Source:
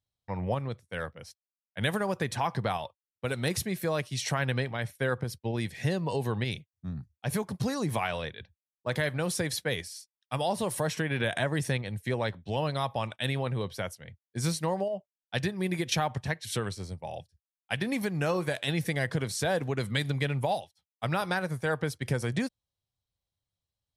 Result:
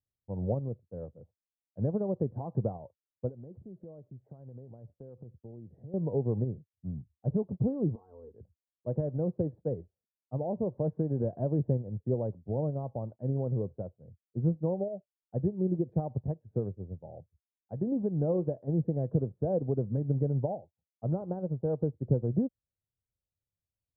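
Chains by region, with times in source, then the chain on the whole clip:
3.29–5.94 s: low-pass 7 kHz + compression 4:1, threshold -40 dBFS
7.95–8.35 s: static phaser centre 640 Hz, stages 6 + comb 4.5 ms, depth 70% + compression 10:1, threshold -38 dBFS
whole clip: inverse Chebyshev low-pass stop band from 2.6 kHz, stop band 70 dB; upward expansion 1.5:1, over -40 dBFS; trim +4 dB

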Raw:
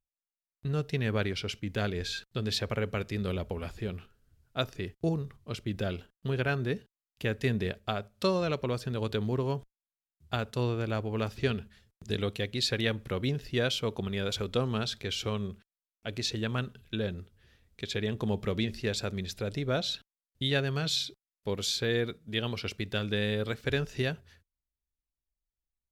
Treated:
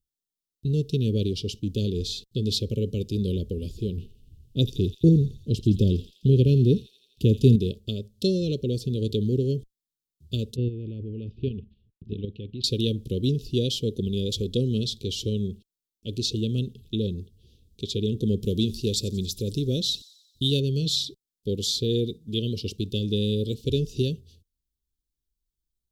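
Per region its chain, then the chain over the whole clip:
3.97–7.56 s: bass shelf 420 Hz +8 dB + feedback echo behind a high-pass 84 ms, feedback 68%, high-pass 3.3 kHz, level -8.5 dB
10.56–12.64 s: Chebyshev low-pass 2.6 kHz, order 3 + peaking EQ 570 Hz -4 dB 1.5 oct + level held to a coarse grid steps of 10 dB
18.42–20.60 s: treble shelf 6.3 kHz +8.5 dB + feedback echo behind a high-pass 90 ms, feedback 56%, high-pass 5.5 kHz, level -16 dB
whole clip: inverse Chebyshev band-stop 700–2100 Hz, stop band 40 dB; peaking EQ 9.2 kHz -3 dB 2.5 oct; trim +7 dB

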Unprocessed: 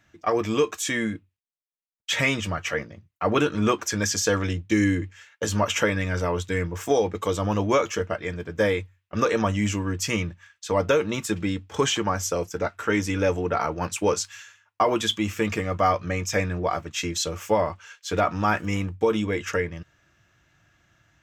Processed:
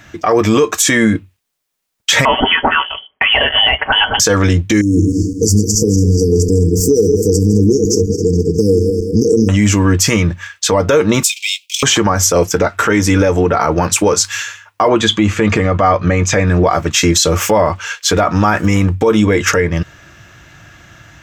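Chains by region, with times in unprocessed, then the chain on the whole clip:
2.25–4.20 s: peaking EQ 2.5 kHz +8 dB 0.69 oct + comb 5.8 ms, depth 53% + frequency inversion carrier 3.2 kHz
4.81–9.49 s: backward echo that repeats 105 ms, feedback 63%, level -10 dB + compression 2:1, threshold -29 dBFS + brick-wall FIR band-stop 490–4500 Hz
11.23–11.83 s: waveshaping leveller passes 1 + steep high-pass 2.3 kHz 96 dB/octave
14.88–16.48 s: distance through air 85 m + band-stop 5.4 kHz, Q 8
whole clip: dynamic bell 2.8 kHz, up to -5 dB, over -43 dBFS, Q 2.1; compression 5:1, threshold -28 dBFS; loudness maximiser +23 dB; trim -1 dB

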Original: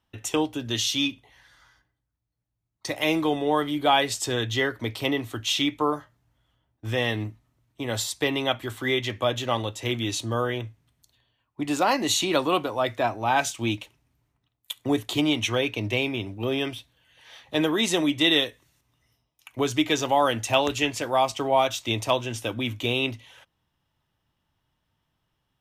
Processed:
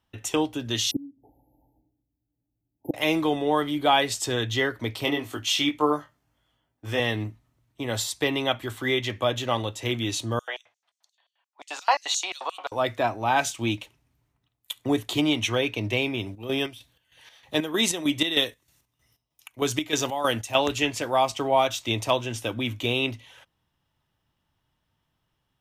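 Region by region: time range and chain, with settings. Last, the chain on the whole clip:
0.91–2.94 s: peaking EQ 290 Hz +14.5 dB 0.57 oct + inverted gate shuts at -12 dBFS, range -27 dB + brick-wall FIR band-stop 910–11000 Hz
5.05–7.00 s: bass shelf 120 Hz -10 dB + band-stop 3.8 kHz, Q 19 + doubling 20 ms -4 dB
10.39–12.72 s: LFO high-pass square 5.7 Hz 690–6800 Hz + three-band isolator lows -13 dB, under 600 Hz, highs -18 dB, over 6.2 kHz
16.18–20.55 s: treble shelf 5.6 kHz +6.5 dB + square tremolo 3.2 Hz, depth 65%, duty 55%
whole clip: none

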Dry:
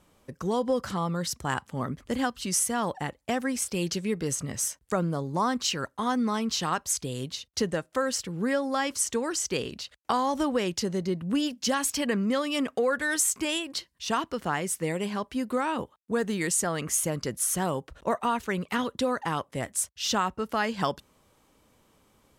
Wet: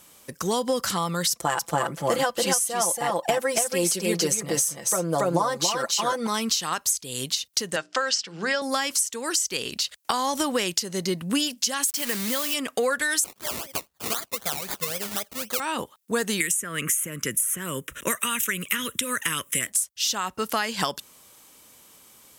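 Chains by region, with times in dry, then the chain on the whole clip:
1.31–6.27 s: peaking EQ 600 Hz +12.5 dB 1.9 oct + comb 5.9 ms, depth 76% + delay 281 ms -3.5 dB
7.76–8.62 s: cabinet simulation 180–6300 Hz, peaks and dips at 250 Hz -8 dB, 440 Hz -3 dB, 700 Hz +6 dB, 1.5 kHz +5 dB, 2.9 kHz +5 dB, 5.1 kHz +6 dB + hum notches 60/120/180/240/300/360/420 Hz
11.88–12.54 s: high-pass 55 Hz 24 dB/octave + word length cut 6-bit, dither none
13.24–15.60 s: static phaser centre 1.5 kHz, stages 8 + decimation with a swept rate 22×, swing 60% 3.9 Hz
16.40–19.67 s: static phaser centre 1.9 kHz, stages 4 + three bands compressed up and down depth 100%
whole clip: tilt EQ +4.5 dB/octave; compression 10:1, threshold -27 dBFS; bass shelf 350 Hz +9 dB; trim +5 dB

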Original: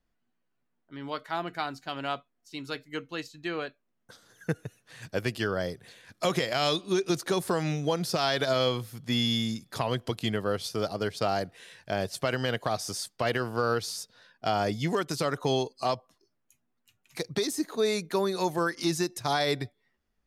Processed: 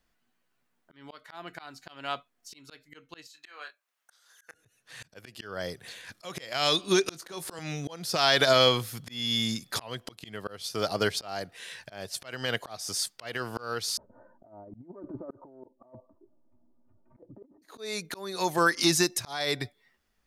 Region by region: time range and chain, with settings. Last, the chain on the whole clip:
3.27–4.54 s: high-pass 930 Hz + dynamic bell 3 kHz, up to -6 dB, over -54 dBFS, Q 1.2 + doubling 27 ms -8 dB
7.08–7.59 s: doubling 19 ms -12 dB + three bands compressed up and down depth 100%
13.97–17.62 s: Bessel low-pass 550 Hz, order 6 + comb 3.3 ms, depth 88% + compressor with a negative ratio -36 dBFS, ratio -0.5
whole clip: tilt shelf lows -4 dB, about 730 Hz; slow attack 522 ms; trim +5 dB

